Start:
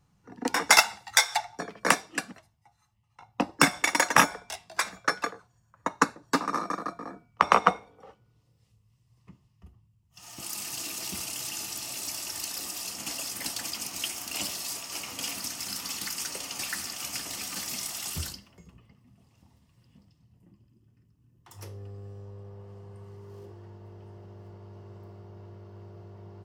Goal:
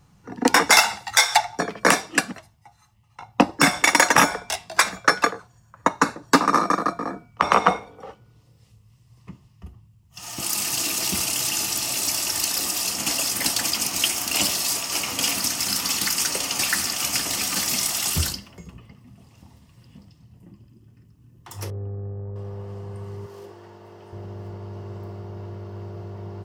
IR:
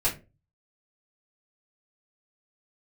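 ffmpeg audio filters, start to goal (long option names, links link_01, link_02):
-filter_complex "[0:a]asettb=1/sr,asplit=3[link_01][link_02][link_03];[link_01]atrim=end=21.704[link_04];[link_02]atrim=start=21.7:end=22.36,asetpts=PTS-STARTPTS,afade=type=in:duration=0.004:curve=qsin,afade=type=out:start_time=0.656:duration=0.004:curve=qsin,adynamicsmooth=sensitivity=3:basefreq=700[link_05];[link_03]atrim=start=22.356[link_06];[link_04][link_05]acrossfade=duration=0.004:curve1=hsin:curve2=qsin[link_07];[link_07][link_06]acrossfade=duration=0.004:curve1=qsin:curve2=hsin,asettb=1/sr,asplit=3[link_08][link_09][link_10];[link_08]atrim=end=23.264[link_11];[link_09]atrim=start=23.26:end=24.13,asetpts=PTS-STARTPTS,afade=type=in:duration=0.004:curve=qsin,afade=type=out:start_time=0.866:duration=0.004:curve=qsin,highpass=frequency=550:poles=1[link_12];[link_10]atrim=start=24.126[link_13];[link_11][link_12]acrossfade=duration=0.004:curve1=hsin:curve2=qsin[link_14];[link_14][link_13]acrossfade=duration=0.004:curve1=qsin:curve2=hsin,alimiter=level_in=12dB:limit=-1dB:release=50:level=0:latency=1,volume=-1dB"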